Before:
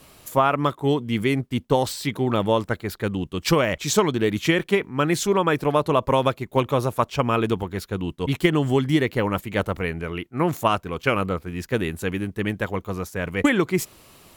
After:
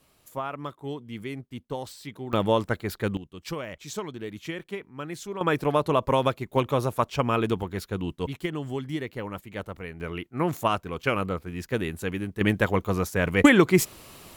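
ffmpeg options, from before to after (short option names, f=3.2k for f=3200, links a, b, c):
-af "asetnsamples=n=441:p=0,asendcmd='2.33 volume volume -2dB;3.17 volume volume -14.5dB;5.41 volume volume -3dB;8.27 volume volume -11.5dB;10 volume volume -4dB;12.41 volume volume 3dB',volume=-13.5dB"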